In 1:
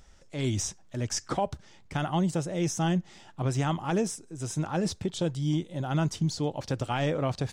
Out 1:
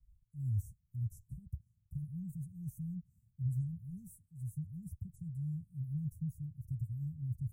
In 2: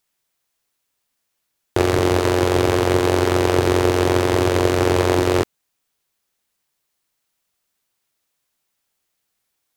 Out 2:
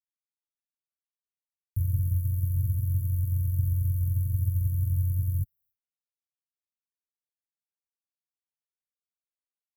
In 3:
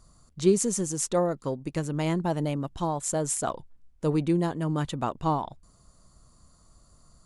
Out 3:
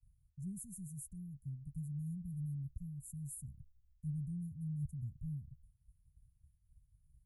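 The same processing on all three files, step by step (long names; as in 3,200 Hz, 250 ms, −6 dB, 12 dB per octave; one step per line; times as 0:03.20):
downward expander −50 dBFS
inverse Chebyshev band-stop filter 480–4,100 Hz, stop band 70 dB
notch comb filter 320 Hz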